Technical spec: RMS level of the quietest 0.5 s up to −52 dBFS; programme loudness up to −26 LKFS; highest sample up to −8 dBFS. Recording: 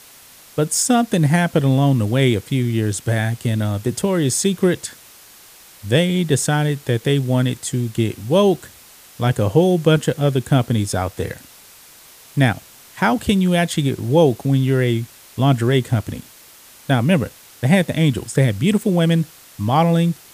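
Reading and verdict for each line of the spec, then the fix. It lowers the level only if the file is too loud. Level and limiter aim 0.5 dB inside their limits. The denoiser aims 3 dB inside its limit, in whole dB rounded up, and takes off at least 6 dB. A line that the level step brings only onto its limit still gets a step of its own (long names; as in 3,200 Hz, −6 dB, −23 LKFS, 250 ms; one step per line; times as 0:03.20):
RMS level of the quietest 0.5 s −45 dBFS: out of spec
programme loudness −18.5 LKFS: out of spec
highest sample −2.0 dBFS: out of spec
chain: level −8 dB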